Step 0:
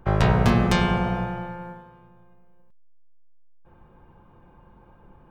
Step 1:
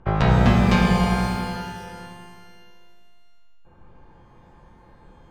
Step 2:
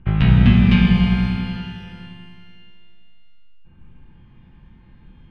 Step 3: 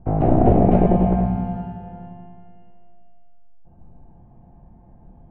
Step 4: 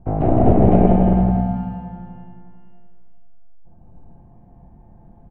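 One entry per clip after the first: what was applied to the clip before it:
low-pass 5 kHz 12 dB/octave; pitch-shifted reverb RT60 1.9 s, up +12 st, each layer -8 dB, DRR 2.5 dB
FFT filter 230 Hz 0 dB, 530 Hz -18 dB, 1.1 kHz -14 dB, 2.9 kHz +1 dB, 7.1 kHz -25 dB; trim +5 dB
one-sided wavefolder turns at -14 dBFS; resonant low-pass 700 Hz, resonance Q 8.7; trim -1 dB
de-hum 80.63 Hz, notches 35; on a send: delay 162 ms -3.5 dB

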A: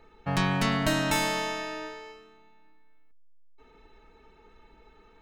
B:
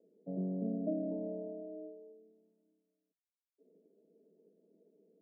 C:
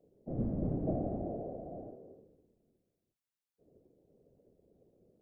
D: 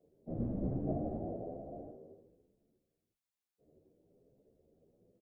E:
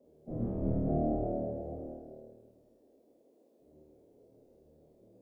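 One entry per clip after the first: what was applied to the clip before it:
Chebyshev band-pass 170–630 Hz, order 5; trim -6 dB
octave divider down 1 oct, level 0 dB; whisper effect
endless flanger 11.1 ms +1.1 Hz; trim +1 dB
flutter echo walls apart 4.5 m, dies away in 1.1 s; band noise 230–600 Hz -66 dBFS

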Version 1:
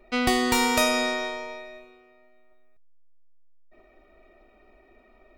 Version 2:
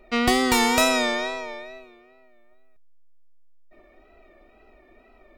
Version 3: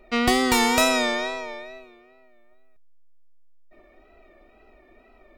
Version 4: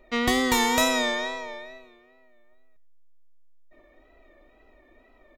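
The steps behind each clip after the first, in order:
wow and flutter 79 cents; trim +2.5 dB
no audible change
rippled EQ curve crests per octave 1.1, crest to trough 6 dB; delay 95 ms -20 dB; trim -3 dB

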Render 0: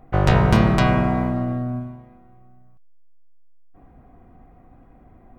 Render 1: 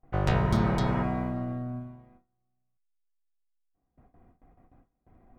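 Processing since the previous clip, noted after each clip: spectral replace 0.47–1.00 s, 420–3100 Hz before; gate with hold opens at -39 dBFS; trim -9 dB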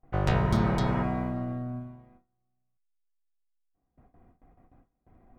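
no audible change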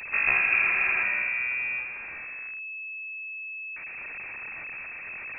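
jump at every zero crossing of -30 dBFS; in parallel at -10 dB: bit crusher 5-bit; on the sum: frequency inversion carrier 2.6 kHz; trim -3.5 dB

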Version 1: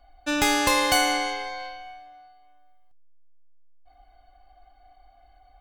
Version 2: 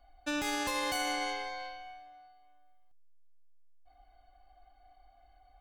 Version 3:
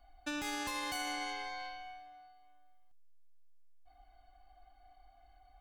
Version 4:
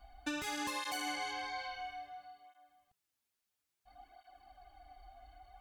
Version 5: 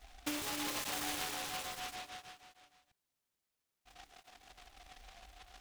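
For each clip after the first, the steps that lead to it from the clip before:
peak limiter -18.5 dBFS, peak gain reduction 10.5 dB; trim -6 dB
compression 2:1, threshold -38 dBFS, peak gain reduction 5 dB; peaking EQ 510 Hz -8.5 dB 0.36 oct
compression 2:1, threshold -47 dBFS, peak gain reduction 7 dB; cancelling through-zero flanger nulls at 0.59 Hz, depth 7.3 ms; trim +9 dB
delay time shaken by noise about 2.2 kHz, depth 0.21 ms

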